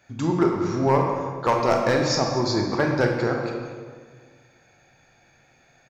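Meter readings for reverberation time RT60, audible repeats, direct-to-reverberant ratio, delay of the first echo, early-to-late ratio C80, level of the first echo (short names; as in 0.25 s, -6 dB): 1.7 s, 1, 1.0 dB, 0.236 s, 4.0 dB, -15.0 dB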